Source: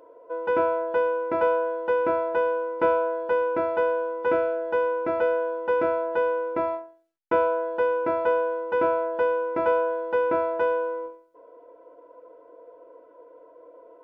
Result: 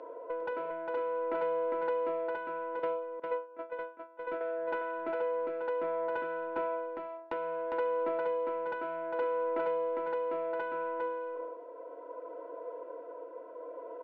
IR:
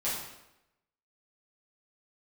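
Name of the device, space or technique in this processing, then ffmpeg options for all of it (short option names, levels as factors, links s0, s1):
AM radio: -filter_complex "[0:a]equalizer=f=190:t=o:w=2.1:g=-3.5,asettb=1/sr,asplit=3[s0][s1][s2];[s0]atrim=end=2.794[s3];[s1]atrim=start=2.79:end=4.41,asetpts=PTS-STARTPTS,afade=t=in:d=0.004:c=qsin,afade=t=out:st=1.616:d=0.004:c=qsin,agate=range=0.0316:threshold=0.0891:ratio=16:detection=peak[s4];[s2]atrim=start=4.406[s5];[s3][s4]acrossfade=d=0.004:c1=hsin:c2=qsin[s6];[s6][s5]acrossfade=d=0.004:c1=qsin:c2=hsin,highpass=130,lowpass=3200,highpass=f=200:w=0.5412,highpass=f=200:w=1.3066,acompressor=threshold=0.0112:ratio=5,asoftclip=type=tanh:threshold=0.0251,tremolo=f=0.64:d=0.33,aecho=1:1:404:0.631,volume=2.11"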